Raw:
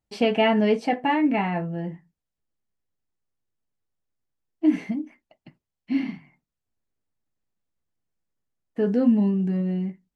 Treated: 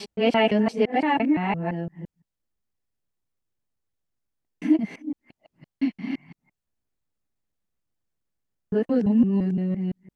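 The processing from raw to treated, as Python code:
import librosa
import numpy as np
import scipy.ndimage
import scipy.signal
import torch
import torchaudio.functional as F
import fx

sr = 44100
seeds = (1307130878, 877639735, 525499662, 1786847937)

y = fx.local_reverse(x, sr, ms=171.0)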